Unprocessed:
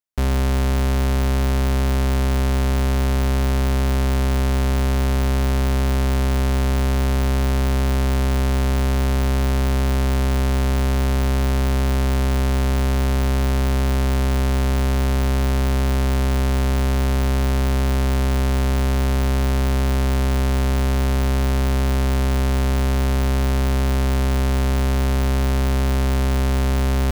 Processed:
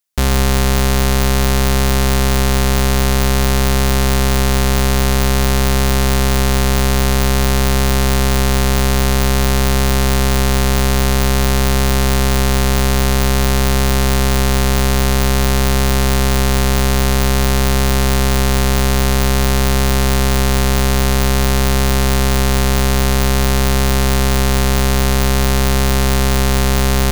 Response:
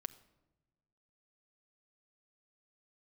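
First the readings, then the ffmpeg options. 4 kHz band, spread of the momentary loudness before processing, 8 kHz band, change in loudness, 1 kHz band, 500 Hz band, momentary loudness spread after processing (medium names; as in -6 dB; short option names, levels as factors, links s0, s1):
+12.0 dB, 0 LU, +14.0 dB, +5.5 dB, +8.0 dB, +7.0 dB, 0 LU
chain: -filter_complex "[0:a]asplit=2[s0][s1];[1:a]atrim=start_sample=2205,highshelf=f=2100:g=10.5[s2];[s1][s2]afir=irnorm=-1:irlink=0,volume=4.47[s3];[s0][s3]amix=inputs=2:normalize=0,volume=0.473"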